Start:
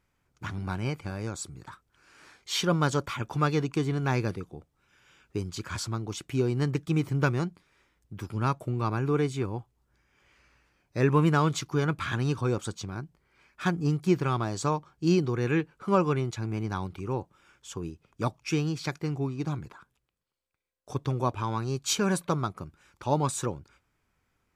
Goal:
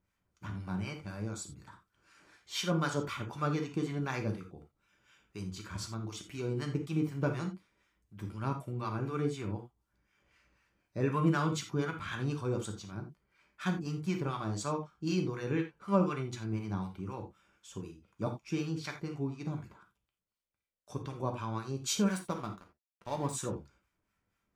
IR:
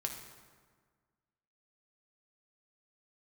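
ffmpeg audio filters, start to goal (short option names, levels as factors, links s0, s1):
-filter_complex "[0:a]acrossover=split=860[s0][s1];[s0]aeval=exprs='val(0)*(1-0.7/2+0.7/2*cos(2*PI*4*n/s))':c=same[s2];[s1]aeval=exprs='val(0)*(1-0.7/2-0.7/2*cos(2*PI*4*n/s))':c=same[s3];[s2][s3]amix=inputs=2:normalize=0,asettb=1/sr,asplit=3[s4][s5][s6];[s4]atrim=end=22.064[s7];[s5]atrim=start=22.06:end=23.33,asetpts=PTS-STARTPTS,afade=t=in:d=0.004:c=qsin,afade=t=out:st=1.266:d=0.004:c=qsin,aeval=exprs='sgn(val(0))*max(abs(val(0))-0.00668,0)':c=same[s8];[s6]atrim=start=23.326[s9];[s7][s8]acrossfade=d=0.004:c1=hsin:c2=qsin[s10];[s10][s9]acrossfade=d=0.004:c1=qsin:c2=hsin[s11];[1:a]atrim=start_sample=2205,afade=t=out:st=0.19:d=0.01,atrim=end_sample=8820,asetrate=66150,aresample=44100[s12];[s11][s12]afir=irnorm=-1:irlink=0"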